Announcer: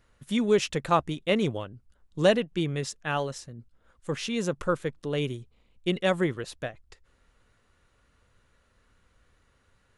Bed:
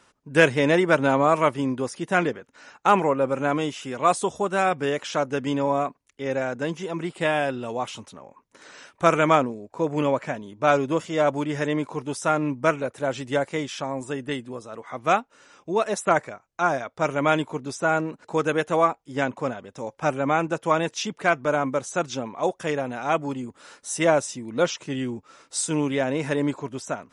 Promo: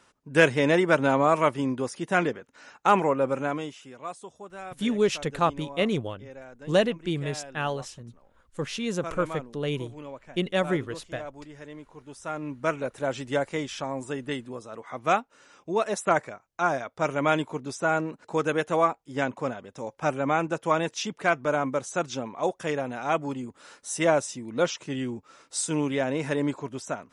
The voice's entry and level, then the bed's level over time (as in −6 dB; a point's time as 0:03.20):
4.50 s, −0.5 dB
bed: 0:03.33 −2 dB
0:04.13 −18 dB
0:11.89 −18 dB
0:12.87 −2.5 dB